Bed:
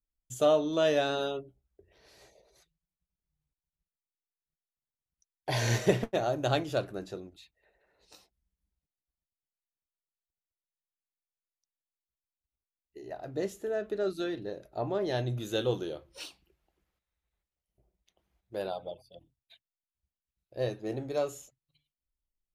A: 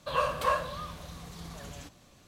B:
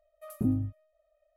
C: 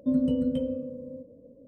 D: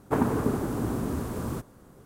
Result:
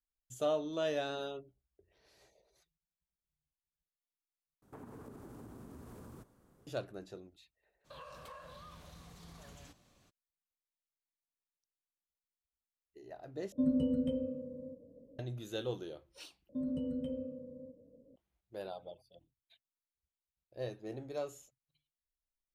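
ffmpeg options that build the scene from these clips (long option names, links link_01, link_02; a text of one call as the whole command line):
ffmpeg -i bed.wav -i cue0.wav -i cue1.wav -i cue2.wav -i cue3.wav -filter_complex "[3:a]asplit=2[link_01][link_02];[0:a]volume=-8.5dB[link_03];[4:a]acompressor=threshold=-33dB:ratio=6:attack=3.2:release=140:knee=1:detection=peak[link_04];[1:a]acompressor=threshold=-38dB:ratio=6:attack=3.2:release=140:knee=1:detection=peak[link_05];[link_02]alimiter=limit=-21.5dB:level=0:latency=1:release=21[link_06];[link_03]asplit=4[link_07][link_08][link_09][link_10];[link_07]atrim=end=4.624[link_11];[link_04]atrim=end=2.05,asetpts=PTS-STARTPTS,volume=-14.5dB[link_12];[link_08]atrim=start=6.666:end=13.524[link_13];[link_01]atrim=end=1.67,asetpts=PTS-STARTPTS,volume=-6dB[link_14];[link_09]atrim=start=15.186:end=16.494[link_15];[link_06]atrim=end=1.67,asetpts=PTS-STARTPTS,volume=-9.5dB[link_16];[link_10]atrim=start=18.156[link_17];[link_05]atrim=end=2.27,asetpts=PTS-STARTPTS,volume=-10dB,afade=type=in:duration=0.02,afade=type=out:start_time=2.25:duration=0.02,adelay=7840[link_18];[link_11][link_12]acrossfade=duration=0.004:curve1=hsin:curve2=hsin[link_19];[link_19][link_13]acrossfade=duration=0.004:curve1=hsin:curve2=hsin[link_20];[link_20][link_14]acrossfade=duration=0.004:curve1=hsin:curve2=hsin[link_21];[link_21][link_15]acrossfade=duration=0.004:curve1=hsin:curve2=hsin[link_22];[link_22][link_16]acrossfade=duration=0.004:curve1=hsin:curve2=hsin[link_23];[link_23][link_17]acrossfade=duration=0.004:curve1=hsin:curve2=hsin[link_24];[link_24][link_18]amix=inputs=2:normalize=0" out.wav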